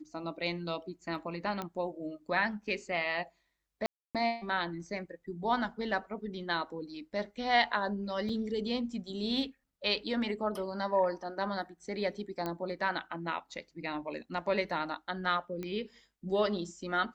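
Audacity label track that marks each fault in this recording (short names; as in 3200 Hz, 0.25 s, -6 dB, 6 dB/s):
1.620000	1.620000	pop -22 dBFS
3.860000	4.150000	gap 0.287 s
8.290000	8.290000	gap 4.2 ms
12.460000	12.460000	pop -21 dBFS
15.630000	15.630000	pop -26 dBFS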